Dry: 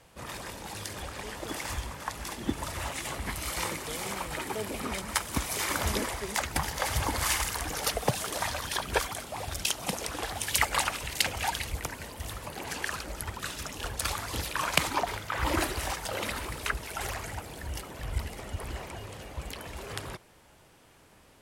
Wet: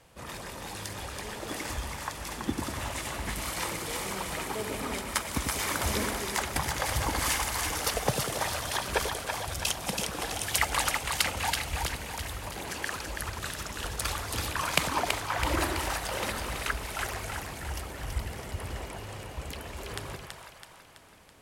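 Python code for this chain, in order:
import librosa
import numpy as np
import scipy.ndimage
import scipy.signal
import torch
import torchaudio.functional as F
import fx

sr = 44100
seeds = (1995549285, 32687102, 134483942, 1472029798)

y = fx.echo_split(x, sr, split_hz=610.0, low_ms=96, high_ms=329, feedback_pct=52, wet_db=-4.5)
y = y * 10.0 ** (-1.0 / 20.0)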